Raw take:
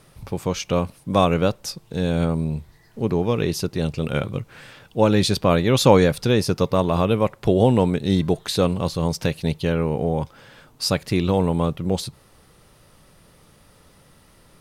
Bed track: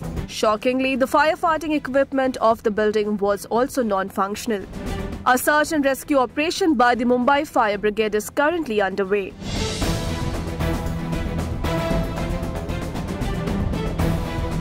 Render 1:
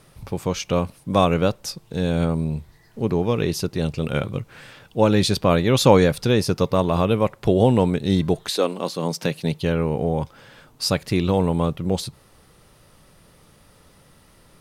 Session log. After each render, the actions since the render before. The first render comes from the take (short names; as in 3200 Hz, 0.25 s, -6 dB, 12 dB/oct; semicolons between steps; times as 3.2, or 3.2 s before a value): 8.49–9.61 HPF 310 Hz -> 100 Hz 24 dB/oct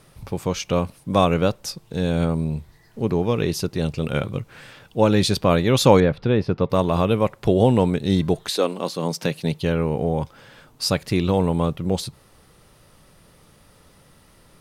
6–6.7 air absorption 350 m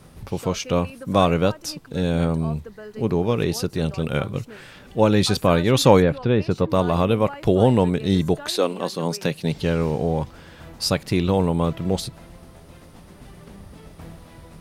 add bed track -19.5 dB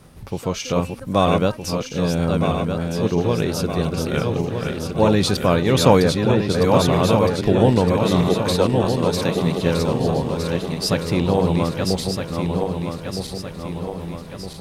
regenerating reverse delay 0.632 s, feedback 70%, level -4 dB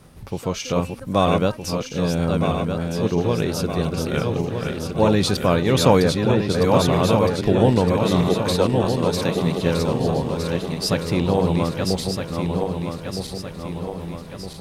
gain -1 dB; limiter -3 dBFS, peak gain reduction 1 dB